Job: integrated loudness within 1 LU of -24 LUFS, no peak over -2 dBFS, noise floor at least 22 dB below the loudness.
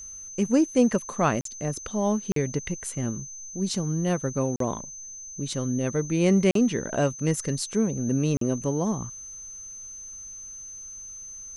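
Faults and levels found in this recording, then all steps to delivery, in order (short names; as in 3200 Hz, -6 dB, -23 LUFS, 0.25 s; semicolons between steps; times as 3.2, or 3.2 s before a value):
dropouts 5; longest dropout 43 ms; steady tone 6200 Hz; tone level -38 dBFS; loudness -26.0 LUFS; peak -9.0 dBFS; loudness target -24.0 LUFS
-> interpolate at 1.41/2.32/4.56/6.51/8.37, 43 ms; notch 6200 Hz, Q 30; gain +2 dB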